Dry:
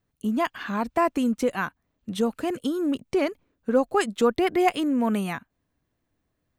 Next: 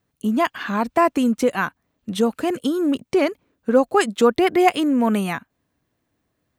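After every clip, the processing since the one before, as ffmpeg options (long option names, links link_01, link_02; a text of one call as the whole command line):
ffmpeg -i in.wav -af "highpass=frequency=100:poles=1,volume=5.5dB" out.wav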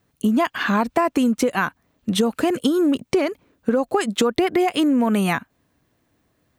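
ffmpeg -i in.wav -af "alimiter=limit=-11dB:level=0:latency=1:release=130,acompressor=threshold=-22dB:ratio=6,volume=6.5dB" out.wav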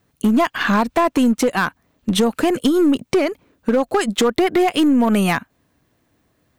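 ffmpeg -i in.wav -af "aeval=exprs='0.531*(cos(1*acos(clip(val(0)/0.531,-1,1)))-cos(1*PI/2))+0.0841*(cos(2*acos(clip(val(0)/0.531,-1,1)))-cos(2*PI/2))+0.075*(cos(3*acos(clip(val(0)/0.531,-1,1)))-cos(3*PI/2))':channel_layout=same,asoftclip=type=hard:threshold=-17.5dB,volume=7.5dB" out.wav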